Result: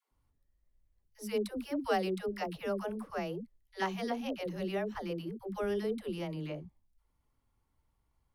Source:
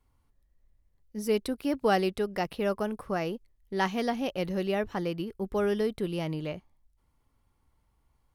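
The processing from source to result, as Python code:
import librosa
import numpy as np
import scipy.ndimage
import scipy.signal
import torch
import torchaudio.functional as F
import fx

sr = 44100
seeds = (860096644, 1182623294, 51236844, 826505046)

y = fx.dispersion(x, sr, late='lows', ms=114.0, hz=380.0)
y = y * librosa.db_to_amplitude(-6.0)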